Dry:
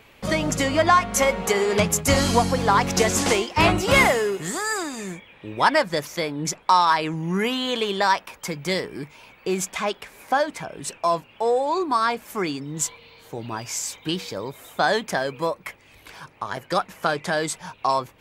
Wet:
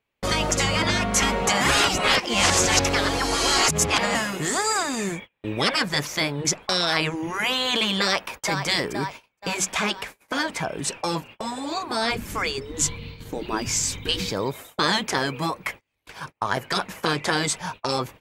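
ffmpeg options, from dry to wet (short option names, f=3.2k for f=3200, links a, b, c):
-filter_complex "[0:a]asplit=2[a][b];[b]afade=t=in:st=8:d=0.01,afade=t=out:st=8.45:d=0.01,aecho=0:1:470|940|1410|1880|2350|2820:0.237137|0.130426|0.0717341|0.0394537|0.0216996|0.0119348[c];[a][c]amix=inputs=2:normalize=0,asplit=3[d][e][f];[d]afade=t=out:st=12.1:d=0.02[g];[e]asubboost=boost=9:cutoff=220,afade=t=in:st=12.1:d=0.02,afade=t=out:st=14.3:d=0.02[h];[f]afade=t=in:st=14.3:d=0.02[i];[g][h][i]amix=inputs=3:normalize=0,asplit=3[j][k][l];[j]atrim=end=1.612[m];[k]atrim=start=1.608:end=4.152,asetpts=PTS-STARTPTS,areverse[n];[l]atrim=start=4.148[o];[m][n]acrossfade=d=0.004:c1=hsin:c2=hsin[p];[p][o]acrossfade=d=0.004:c1=hsin:c2=hsin,agate=range=-34dB:threshold=-42dB:ratio=16:detection=peak,afftfilt=real='re*lt(hypot(re,im),0.282)':imag='im*lt(hypot(re,im),0.282)':win_size=1024:overlap=0.75,acrossover=split=9200[q][r];[r]acompressor=threshold=-49dB:ratio=4:attack=1:release=60[s];[q][s]amix=inputs=2:normalize=0,volume=6dB"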